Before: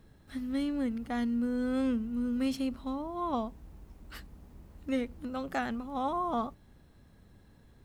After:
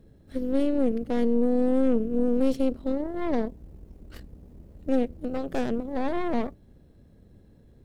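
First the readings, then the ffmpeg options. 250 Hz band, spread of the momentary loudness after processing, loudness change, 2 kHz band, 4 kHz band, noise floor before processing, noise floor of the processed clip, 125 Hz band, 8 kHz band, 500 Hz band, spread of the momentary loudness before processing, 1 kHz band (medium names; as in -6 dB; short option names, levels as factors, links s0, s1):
+6.0 dB, 9 LU, +6.5 dB, 0.0 dB, -1.0 dB, -60 dBFS, -56 dBFS, +6.0 dB, no reading, +11.5 dB, 13 LU, -1.5 dB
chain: -af "aeval=exprs='0.119*(cos(1*acos(clip(val(0)/0.119,-1,1)))-cos(1*PI/2))+0.0237*(cos(4*acos(clip(val(0)/0.119,-1,1)))-cos(4*PI/2))+0.015*(cos(8*acos(clip(val(0)/0.119,-1,1)))-cos(8*PI/2))':c=same,lowshelf=f=710:t=q:w=1.5:g=8.5,volume=0.596"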